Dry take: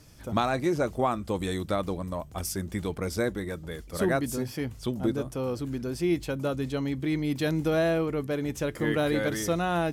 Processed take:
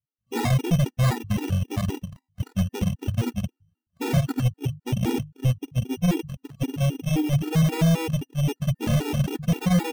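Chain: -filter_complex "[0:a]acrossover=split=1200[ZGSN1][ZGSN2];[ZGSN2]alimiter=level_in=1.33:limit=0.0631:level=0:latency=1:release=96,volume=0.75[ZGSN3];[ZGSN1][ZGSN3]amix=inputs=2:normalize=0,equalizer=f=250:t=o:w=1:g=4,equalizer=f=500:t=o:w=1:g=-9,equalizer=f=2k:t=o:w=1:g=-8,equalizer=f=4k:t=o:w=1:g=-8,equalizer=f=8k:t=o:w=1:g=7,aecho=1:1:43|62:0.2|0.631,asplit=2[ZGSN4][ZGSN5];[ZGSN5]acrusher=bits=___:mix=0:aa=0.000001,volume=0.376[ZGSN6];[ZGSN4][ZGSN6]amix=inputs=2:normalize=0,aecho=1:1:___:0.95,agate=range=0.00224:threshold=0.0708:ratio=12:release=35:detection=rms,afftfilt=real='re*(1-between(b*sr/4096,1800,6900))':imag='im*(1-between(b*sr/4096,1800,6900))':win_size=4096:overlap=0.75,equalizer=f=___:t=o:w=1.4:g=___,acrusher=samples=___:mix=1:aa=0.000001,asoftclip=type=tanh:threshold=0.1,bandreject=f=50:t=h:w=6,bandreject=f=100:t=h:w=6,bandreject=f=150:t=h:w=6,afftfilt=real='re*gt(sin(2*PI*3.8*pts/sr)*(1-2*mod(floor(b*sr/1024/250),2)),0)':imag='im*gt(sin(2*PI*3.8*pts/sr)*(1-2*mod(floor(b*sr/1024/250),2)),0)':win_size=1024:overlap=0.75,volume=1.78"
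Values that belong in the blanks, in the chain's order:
5, 1.1, 120, 13, 15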